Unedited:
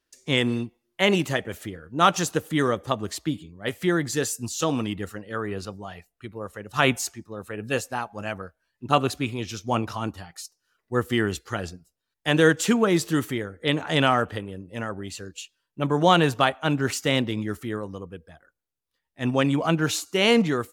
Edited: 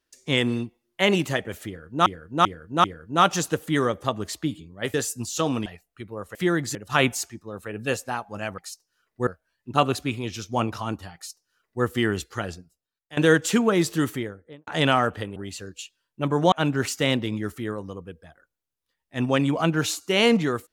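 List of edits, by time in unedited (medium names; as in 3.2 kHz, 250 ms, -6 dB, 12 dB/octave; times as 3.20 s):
1.67–2.06 s: loop, 4 plays
3.77–4.17 s: move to 6.59 s
4.89–5.90 s: delete
10.30–10.99 s: copy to 8.42 s
11.53–12.32 s: fade out, to -19 dB
13.23–13.82 s: studio fade out
14.51–14.95 s: delete
16.11–16.57 s: delete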